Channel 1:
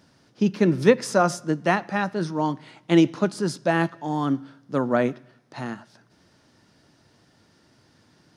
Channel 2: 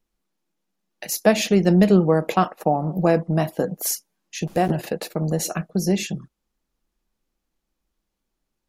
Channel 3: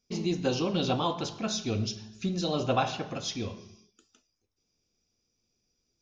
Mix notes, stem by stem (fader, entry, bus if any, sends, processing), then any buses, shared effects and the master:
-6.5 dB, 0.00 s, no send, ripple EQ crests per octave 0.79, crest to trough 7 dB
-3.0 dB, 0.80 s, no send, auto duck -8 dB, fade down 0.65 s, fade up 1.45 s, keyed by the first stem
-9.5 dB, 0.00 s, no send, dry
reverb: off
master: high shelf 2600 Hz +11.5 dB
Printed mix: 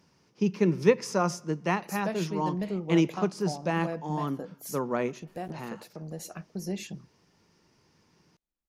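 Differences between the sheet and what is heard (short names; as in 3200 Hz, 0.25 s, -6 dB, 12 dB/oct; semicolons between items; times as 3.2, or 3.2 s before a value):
stem 2 -3.0 dB -> -9.0 dB; stem 3: muted; master: missing high shelf 2600 Hz +11.5 dB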